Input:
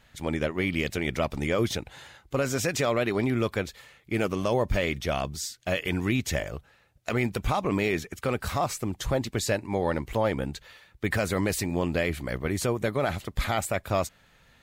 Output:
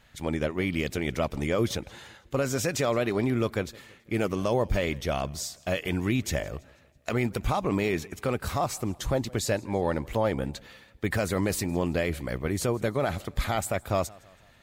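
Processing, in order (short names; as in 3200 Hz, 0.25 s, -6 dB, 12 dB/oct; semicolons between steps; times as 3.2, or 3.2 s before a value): dynamic EQ 2300 Hz, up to -3 dB, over -40 dBFS, Q 0.78; warbling echo 0.164 s, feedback 48%, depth 103 cents, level -24 dB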